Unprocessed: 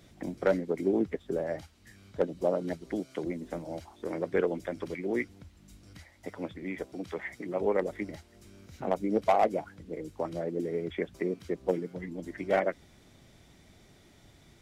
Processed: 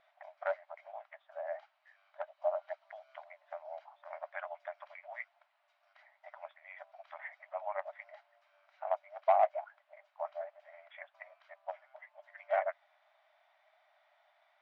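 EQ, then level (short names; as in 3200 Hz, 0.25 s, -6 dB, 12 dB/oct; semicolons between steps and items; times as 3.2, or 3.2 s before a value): brick-wall FIR high-pass 580 Hz; air absorption 310 m; high shelf 3100 Hz -12 dB; 0.0 dB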